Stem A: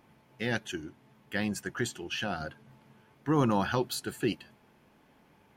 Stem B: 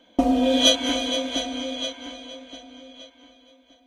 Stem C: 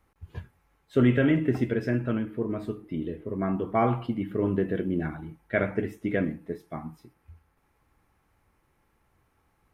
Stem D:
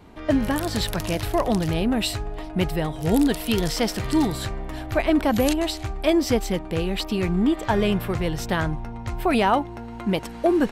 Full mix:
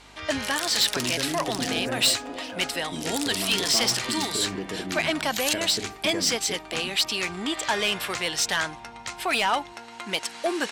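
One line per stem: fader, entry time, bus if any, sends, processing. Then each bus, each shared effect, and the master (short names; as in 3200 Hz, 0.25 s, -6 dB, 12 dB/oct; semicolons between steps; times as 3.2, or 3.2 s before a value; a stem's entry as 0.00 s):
-18.0 dB, 0.30 s, no send, sample leveller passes 3
-11.0 dB, 1.40 s, no send, elliptic low-pass 1300 Hz
-0.5 dB, 0.00 s, muted 2.09–2.79, no send, compressor, threshold -27 dBFS, peak gain reduction 11 dB; hum 50 Hz, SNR 17 dB
-0.5 dB, 0.00 s, no send, weighting filter ITU-R 468; vocal rider within 4 dB 2 s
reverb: off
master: soft clip -15.5 dBFS, distortion -11 dB; low shelf 120 Hz -6 dB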